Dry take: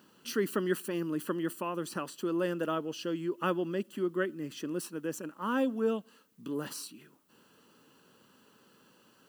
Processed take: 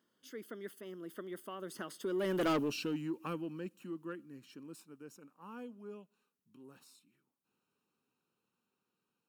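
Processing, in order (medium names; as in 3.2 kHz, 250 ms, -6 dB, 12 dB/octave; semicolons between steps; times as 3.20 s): Doppler pass-by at 2.51 s, 29 m/s, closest 2.7 m; dynamic bell 850 Hz, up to -7 dB, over -55 dBFS, Q 1; saturation -39.5 dBFS, distortion -7 dB; trim +12 dB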